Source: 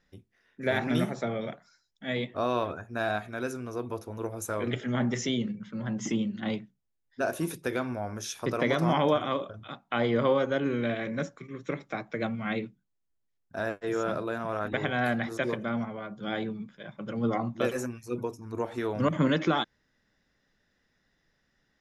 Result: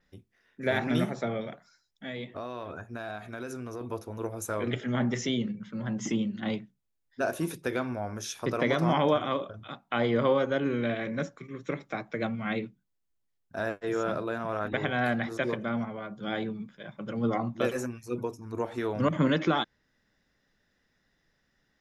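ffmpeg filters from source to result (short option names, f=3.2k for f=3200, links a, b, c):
-filter_complex "[0:a]asettb=1/sr,asplit=3[a][b][c];[a]atrim=end=1.414[d];[b]atrim=start=1.41:end=3.81,asetpts=PTS-STARTPTS,afade=t=in:d=0.004:c=qsin,afade=t=out:st=2.396:d=0.004:c=qsin,acompressor=threshold=-33dB:ratio=6:attack=3.2:release=140:knee=1:detection=peak[e];[c]atrim=start=3.806[f];[d][e]acrossfade=d=0.004:c1=hsin:c2=qsin[g];[g][f]acrossfade=d=0.004:c1=qsin:c2=hsin,adynamicequalizer=threshold=0.00251:dfrequency=6500:dqfactor=0.7:tfrequency=6500:tqfactor=0.7:attack=5:release=100:ratio=0.375:range=2.5:mode=cutabove:tftype=highshelf"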